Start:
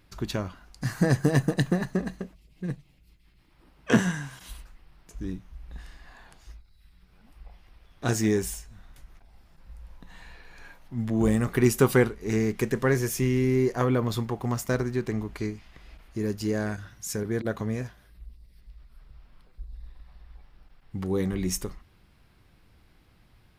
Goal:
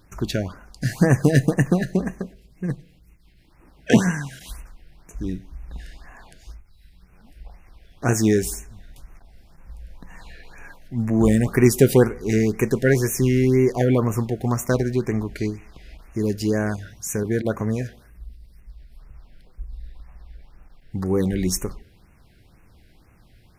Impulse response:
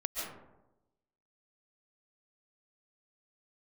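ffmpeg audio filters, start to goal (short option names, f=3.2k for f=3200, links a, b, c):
-filter_complex "[0:a]asplit=2[a][b];[1:a]atrim=start_sample=2205,asetrate=83790,aresample=44100,lowpass=2.3k[c];[b][c]afir=irnorm=-1:irlink=0,volume=-19.5dB[d];[a][d]amix=inputs=2:normalize=0,afftfilt=real='re*(1-between(b*sr/1024,960*pow(4100/960,0.5+0.5*sin(2*PI*2*pts/sr))/1.41,960*pow(4100/960,0.5+0.5*sin(2*PI*2*pts/sr))*1.41))':imag='im*(1-between(b*sr/1024,960*pow(4100/960,0.5+0.5*sin(2*PI*2*pts/sr))/1.41,960*pow(4100/960,0.5+0.5*sin(2*PI*2*pts/sr))*1.41))':win_size=1024:overlap=0.75,volume=5.5dB"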